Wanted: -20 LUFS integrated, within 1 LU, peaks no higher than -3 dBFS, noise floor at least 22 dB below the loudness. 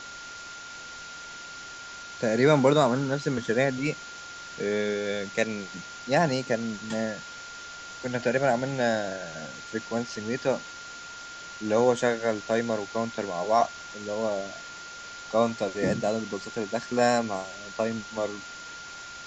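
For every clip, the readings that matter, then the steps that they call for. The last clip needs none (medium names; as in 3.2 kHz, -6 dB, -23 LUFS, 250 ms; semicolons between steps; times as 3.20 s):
steady tone 1.4 kHz; tone level -41 dBFS; noise floor -42 dBFS; noise floor target -50 dBFS; loudness -27.5 LUFS; peak level -8.0 dBFS; loudness target -20.0 LUFS
-> band-stop 1.4 kHz, Q 30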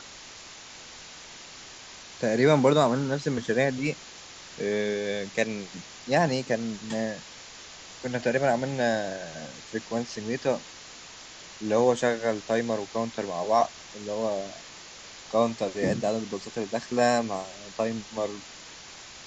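steady tone not found; noise floor -46 dBFS; noise floor target -50 dBFS
-> noise reduction 6 dB, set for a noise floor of -46 dBFS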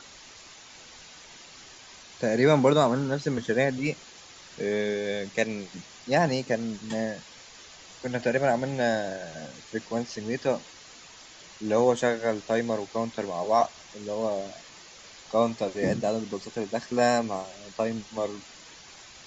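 noise floor -49 dBFS; noise floor target -50 dBFS
-> noise reduction 6 dB, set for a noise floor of -49 dBFS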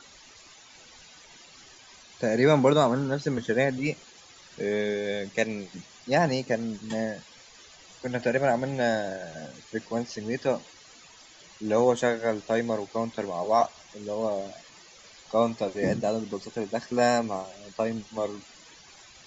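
noise floor -52 dBFS; loudness -27.5 LUFS; peak level -8.5 dBFS; loudness target -20.0 LUFS
-> trim +7.5 dB; peak limiter -3 dBFS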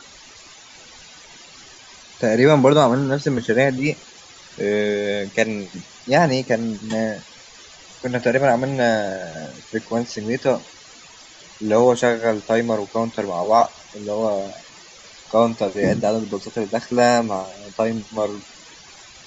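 loudness -20.0 LUFS; peak level -3.0 dBFS; noise floor -45 dBFS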